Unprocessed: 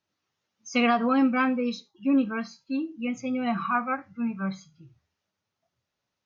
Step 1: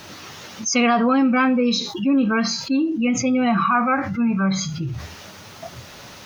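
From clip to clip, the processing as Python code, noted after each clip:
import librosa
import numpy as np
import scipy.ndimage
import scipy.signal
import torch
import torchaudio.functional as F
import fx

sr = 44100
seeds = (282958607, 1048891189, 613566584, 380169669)

y = fx.env_flatten(x, sr, amount_pct=70)
y = F.gain(torch.from_numpy(y), 3.0).numpy()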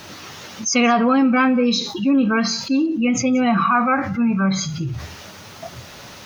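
y = x + 10.0 ** (-23.5 / 20.0) * np.pad(x, (int(180 * sr / 1000.0), 0))[:len(x)]
y = F.gain(torch.from_numpy(y), 1.5).numpy()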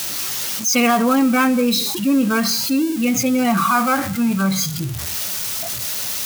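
y = x + 0.5 * 10.0 ** (-16.5 / 20.0) * np.diff(np.sign(x), prepend=np.sign(x[:1]))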